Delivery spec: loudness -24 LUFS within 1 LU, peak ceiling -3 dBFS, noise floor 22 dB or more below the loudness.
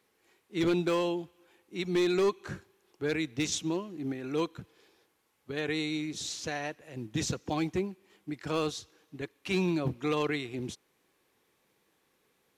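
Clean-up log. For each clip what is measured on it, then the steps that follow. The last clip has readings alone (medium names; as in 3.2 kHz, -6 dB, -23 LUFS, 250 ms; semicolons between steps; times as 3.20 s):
clipped samples 0.6%; clipping level -21.5 dBFS; loudness -32.5 LUFS; peak level -21.5 dBFS; loudness target -24.0 LUFS
-> clip repair -21.5 dBFS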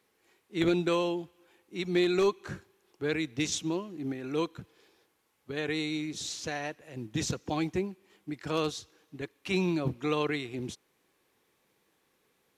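clipped samples 0.0%; loudness -32.0 LUFS; peak level -13.5 dBFS; loudness target -24.0 LUFS
-> trim +8 dB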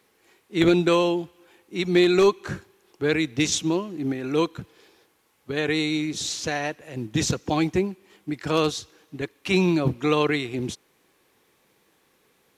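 loudness -24.0 LUFS; peak level -5.5 dBFS; noise floor -65 dBFS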